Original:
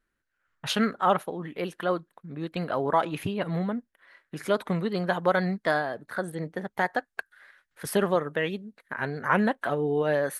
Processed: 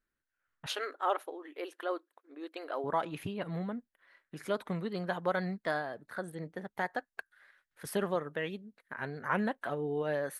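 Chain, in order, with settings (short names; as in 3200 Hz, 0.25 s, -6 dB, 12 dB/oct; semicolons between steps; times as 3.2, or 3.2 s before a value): 0.66–2.84 brick-wall FIR high-pass 270 Hz; gain -8 dB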